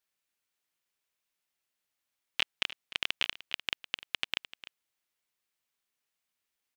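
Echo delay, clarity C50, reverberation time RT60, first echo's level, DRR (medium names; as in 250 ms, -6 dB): 301 ms, no reverb, no reverb, -16.0 dB, no reverb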